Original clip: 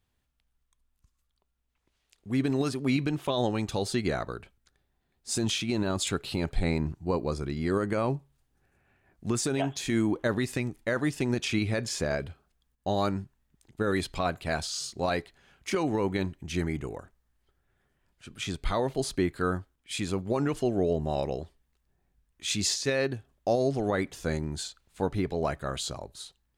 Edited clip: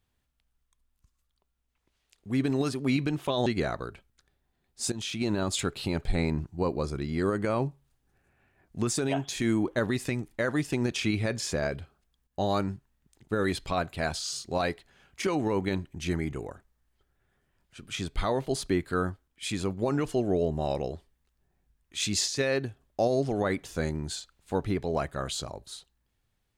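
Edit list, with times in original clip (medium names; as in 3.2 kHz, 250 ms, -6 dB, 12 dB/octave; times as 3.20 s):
3.46–3.94 s: delete
5.40–5.71 s: fade in, from -14.5 dB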